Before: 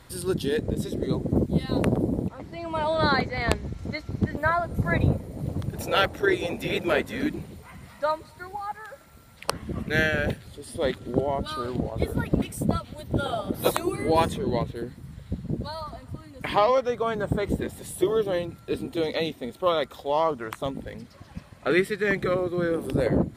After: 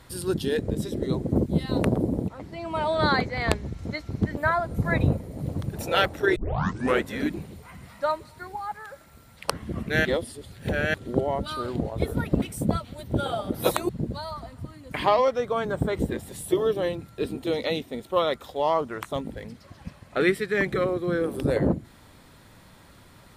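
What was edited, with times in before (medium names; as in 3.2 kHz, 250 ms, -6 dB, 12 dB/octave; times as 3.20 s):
6.36 s: tape start 0.67 s
10.05–10.94 s: reverse
13.89–15.39 s: delete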